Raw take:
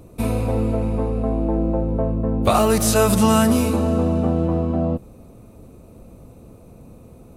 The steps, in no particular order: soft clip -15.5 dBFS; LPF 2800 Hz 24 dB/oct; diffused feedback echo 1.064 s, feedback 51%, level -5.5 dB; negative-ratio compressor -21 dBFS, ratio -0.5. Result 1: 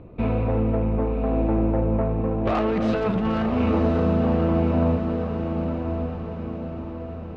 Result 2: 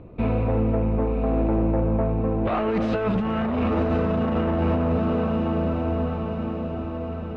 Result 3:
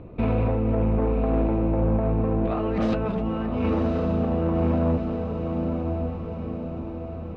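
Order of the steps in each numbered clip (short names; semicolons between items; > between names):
LPF > soft clip > negative-ratio compressor > diffused feedback echo; diffused feedback echo > soft clip > negative-ratio compressor > LPF; LPF > negative-ratio compressor > diffused feedback echo > soft clip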